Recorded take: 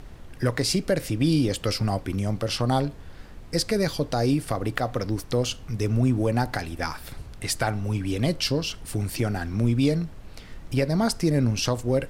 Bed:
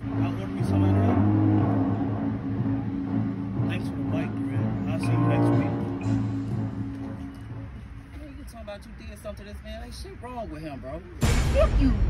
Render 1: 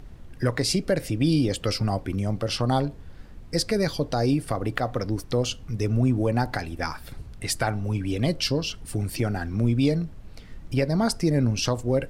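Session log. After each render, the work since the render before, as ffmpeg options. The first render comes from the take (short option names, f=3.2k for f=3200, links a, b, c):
-af "afftdn=nr=6:nf=-43"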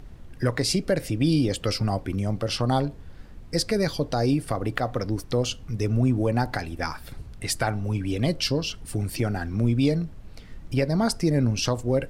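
-af anull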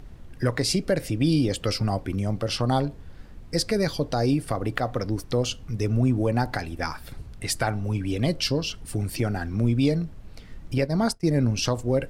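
-filter_complex "[0:a]asettb=1/sr,asplit=3[a][b][c];[a]atrim=end=10.784[d];[b]atrim=start=10.78:end=11.41,asetpts=PTS-STARTPTS,afade=t=in:d=0.004:c=qsin,afade=t=out:st=0.626:d=0.004:c=qsin,agate=range=-33dB:threshold=-23dB:ratio=3:release=100:detection=peak[e];[c]atrim=start=11.406[f];[d][e]acrossfade=d=0.004:c1=hsin:c2=qsin[g];[g][f]acrossfade=d=0.004:c1=qsin:c2=hsin"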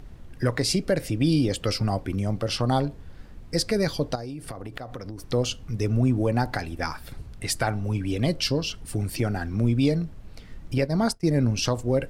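-filter_complex "[0:a]asettb=1/sr,asplit=3[a][b][c];[a]atrim=end=4.154[d];[b]atrim=start=4.15:end=5.24,asetpts=PTS-STARTPTS,afade=t=in:d=0.004:c=qsin,afade=t=out:st=1.086:d=0.004:c=qsin,acompressor=threshold=-31dB:ratio=12:attack=3.2:release=140:knee=1:detection=peak[e];[c]atrim=start=5.236[f];[d][e]acrossfade=d=0.004:c1=hsin:c2=qsin[g];[g][f]acrossfade=d=0.004:c1=qsin:c2=hsin"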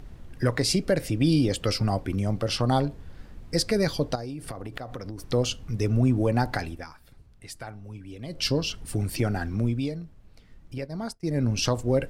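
-filter_complex "[0:a]asplit=5[a][b][c][d][e];[a]atrim=end=6.85,asetpts=PTS-STARTPTS,afade=t=out:st=6.67:d=0.18:silence=0.199526[f];[b]atrim=start=6.85:end=8.29,asetpts=PTS-STARTPTS,volume=-14dB[g];[c]atrim=start=8.29:end=9.91,asetpts=PTS-STARTPTS,afade=t=in:d=0.18:silence=0.199526,afade=t=out:st=1.18:d=0.44:silence=0.316228[h];[d]atrim=start=9.91:end=11.16,asetpts=PTS-STARTPTS,volume=-10dB[i];[e]atrim=start=11.16,asetpts=PTS-STARTPTS,afade=t=in:d=0.44:silence=0.316228[j];[f][g][h][i][j]concat=n=5:v=0:a=1"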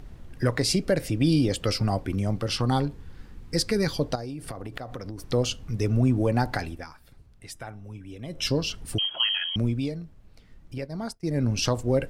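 -filter_complex "[0:a]asettb=1/sr,asplit=3[a][b][c];[a]atrim=end=2.384[d];[b]atrim=start=2.38:end=3.92,asetpts=PTS-STARTPTS,afade=t=in:d=0.004:c=qsin,afade=t=out:st=1.536:d=0.004:c=qsin,equalizer=f=630:t=o:w=0.28:g=-11.5[e];[c]atrim=start=3.916[f];[d][e]acrossfade=d=0.004:c1=hsin:c2=qsin[g];[g][f]acrossfade=d=0.004:c1=qsin:c2=hsin,asettb=1/sr,asplit=3[h][i][j];[h]atrim=end=7.524[k];[i]atrim=start=7.52:end=8.47,asetpts=PTS-STARTPTS,afade=t=in:d=0.004:c=qsin,afade=t=out:st=0.946:d=0.004:c=qsin,asuperstop=centerf=4500:order=8:qfactor=5.6[l];[j]atrim=start=8.466[m];[k][l]acrossfade=d=0.004:c1=hsin:c2=qsin[n];[n][m]acrossfade=d=0.004:c1=qsin:c2=hsin,asettb=1/sr,asplit=3[o][p][q];[o]atrim=end=8.984[r];[p]atrim=start=8.98:end=9.56,asetpts=PTS-STARTPTS,afade=t=in:d=0.004:c=qsin,afade=t=out:st=0.576:d=0.004:c=qsin,lowpass=f=2.8k:t=q:w=0.5098,lowpass=f=2.8k:t=q:w=0.6013,lowpass=f=2.8k:t=q:w=0.9,lowpass=f=2.8k:t=q:w=2.563,afreqshift=-3300[s];[q]atrim=start=9.556[t];[r][s]acrossfade=d=0.004:c1=hsin:c2=qsin[u];[u][t]acrossfade=d=0.004:c1=qsin:c2=hsin"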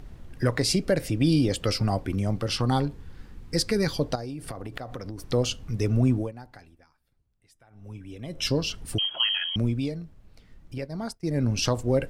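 -filter_complex "[0:a]asplit=3[a][b][c];[a]atrim=end=6.32,asetpts=PTS-STARTPTS,afade=t=out:st=6.13:d=0.19:silence=0.105925[d];[b]atrim=start=6.32:end=7.7,asetpts=PTS-STARTPTS,volume=-19.5dB[e];[c]atrim=start=7.7,asetpts=PTS-STARTPTS,afade=t=in:d=0.19:silence=0.105925[f];[d][e][f]concat=n=3:v=0:a=1"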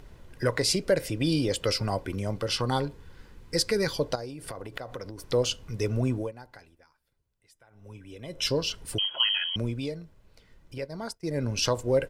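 -af "lowshelf=f=170:g=-9,aecho=1:1:2:0.32"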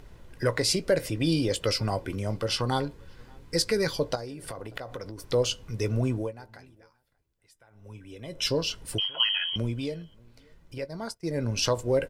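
-filter_complex "[0:a]asplit=2[a][b];[b]adelay=18,volume=-14dB[c];[a][c]amix=inputs=2:normalize=0,asplit=2[d][e];[e]adelay=583.1,volume=-28dB,highshelf=f=4k:g=-13.1[f];[d][f]amix=inputs=2:normalize=0"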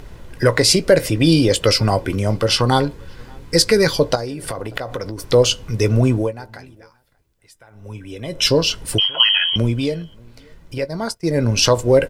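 -af "volume=11.5dB,alimiter=limit=-2dB:level=0:latency=1"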